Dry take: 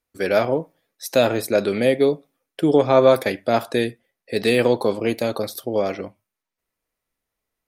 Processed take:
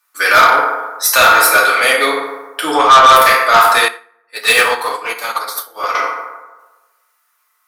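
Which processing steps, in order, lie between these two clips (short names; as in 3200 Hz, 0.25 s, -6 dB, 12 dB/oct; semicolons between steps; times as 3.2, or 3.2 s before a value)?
resonant high-pass 1200 Hz, resonance Q 5.8; high shelf 5200 Hz +10.5 dB; FDN reverb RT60 1.2 s, low-frequency decay 0.85×, high-frequency decay 0.45×, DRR -5 dB; soft clip -11 dBFS, distortion -9 dB; 3.88–5.95 upward expander 2.5:1, over -33 dBFS; gain +8.5 dB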